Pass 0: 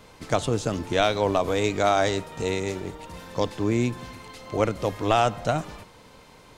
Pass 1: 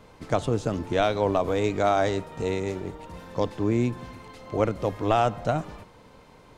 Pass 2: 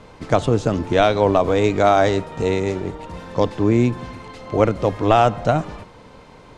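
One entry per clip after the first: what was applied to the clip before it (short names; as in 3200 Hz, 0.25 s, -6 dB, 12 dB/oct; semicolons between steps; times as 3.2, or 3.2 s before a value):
high shelf 2100 Hz -8.5 dB
Bessel low-pass 8000 Hz, order 8; gain +7.5 dB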